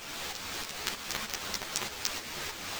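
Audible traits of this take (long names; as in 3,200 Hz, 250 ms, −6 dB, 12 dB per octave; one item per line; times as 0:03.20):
a quantiser's noise floor 6 bits, dither triangular
tremolo saw up 3.2 Hz, depth 60%
aliases and images of a low sample rate 11,000 Hz, jitter 20%
a shimmering, thickened sound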